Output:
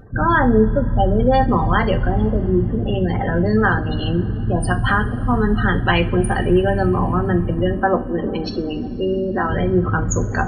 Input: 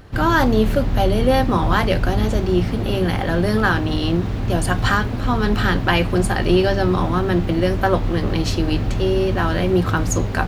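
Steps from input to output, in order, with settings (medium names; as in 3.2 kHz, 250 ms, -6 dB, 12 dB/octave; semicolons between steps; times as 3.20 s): spectral gate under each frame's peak -20 dB strong; 7.74–9.50 s: resonant low shelf 170 Hz -10.5 dB, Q 1.5; two-slope reverb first 0.3 s, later 4 s, from -20 dB, DRR 7 dB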